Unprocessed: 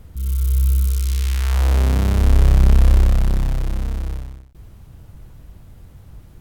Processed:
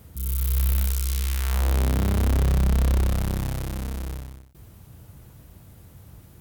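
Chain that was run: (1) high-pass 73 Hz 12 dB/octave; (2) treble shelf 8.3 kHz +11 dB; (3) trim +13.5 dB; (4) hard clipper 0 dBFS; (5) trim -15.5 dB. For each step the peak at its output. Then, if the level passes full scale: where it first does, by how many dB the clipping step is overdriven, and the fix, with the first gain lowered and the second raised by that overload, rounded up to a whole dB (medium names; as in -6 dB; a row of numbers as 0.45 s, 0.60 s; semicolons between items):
-7.5 dBFS, -5.0 dBFS, +8.5 dBFS, 0.0 dBFS, -15.5 dBFS; step 3, 8.5 dB; step 3 +4.5 dB, step 5 -6.5 dB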